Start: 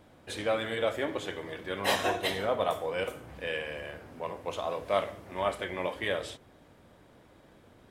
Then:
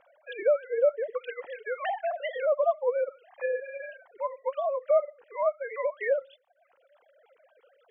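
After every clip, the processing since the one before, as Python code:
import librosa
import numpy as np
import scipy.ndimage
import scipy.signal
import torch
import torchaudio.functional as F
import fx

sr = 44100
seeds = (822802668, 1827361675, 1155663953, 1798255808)

y = fx.sine_speech(x, sr)
y = fx.dereverb_blind(y, sr, rt60_s=0.75)
y = fx.env_lowpass_down(y, sr, base_hz=920.0, full_db=-29.5)
y = y * librosa.db_to_amplitude(5.0)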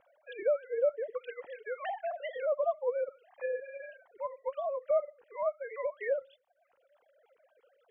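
y = fx.low_shelf(x, sr, hz=280.0, db=9.5)
y = y * librosa.db_to_amplitude(-7.0)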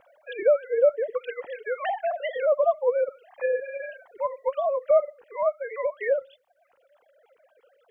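y = fx.rider(x, sr, range_db=4, speed_s=2.0)
y = y * librosa.db_to_amplitude(7.5)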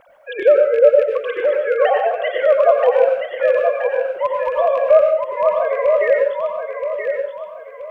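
y = fx.rattle_buzz(x, sr, strikes_db=-41.0, level_db=-31.0)
y = fx.echo_feedback(y, sr, ms=976, feedback_pct=34, wet_db=-6.0)
y = fx.rev_plate(y, sr, seeds[0], rt60_s=0.54, hf_ratio=0.8, predelay_ms=80, drr_db=2.5)
y = y * librosa.db_to_amplitude(7.5)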